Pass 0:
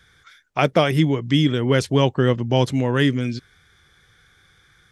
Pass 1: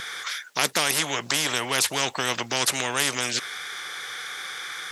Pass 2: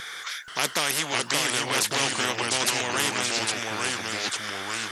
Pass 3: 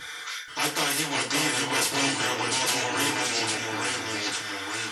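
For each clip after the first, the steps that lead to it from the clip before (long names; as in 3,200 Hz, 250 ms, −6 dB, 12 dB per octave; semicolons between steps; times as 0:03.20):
high-pass filter 670 Hz 12 dB per octave; every bin compressed towards the loudest bin 4 to 1
delay with pitch and tempo change per echo 480 ms, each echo −2 semitones, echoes 2; level −2.5 dB
feedback delay network reverb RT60 0.37 s, low-frequency decay 0.9×, high-frequency decay 0.85×, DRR −7 dB; level −8 dB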